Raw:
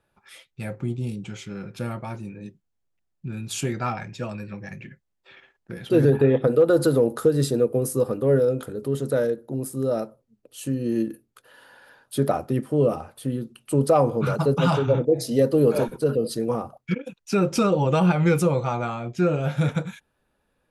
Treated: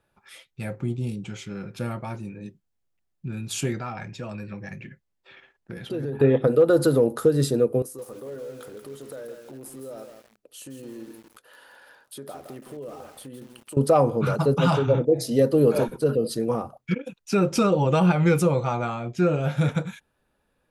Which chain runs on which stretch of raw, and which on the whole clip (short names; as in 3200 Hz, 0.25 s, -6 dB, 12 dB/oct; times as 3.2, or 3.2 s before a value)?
3.79–6.2 high shelf 8600 Hz -4.5 dB + compressor 3:1, threshold -30 dBFS
7.82–13.77 tone controls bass -10 dB, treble +1 dB + compressor 3:1, threshold -40 dBFS + lo-fi delay 0.165 s, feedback 35%, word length 8-bit, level -6.5 dB
whole clip: dry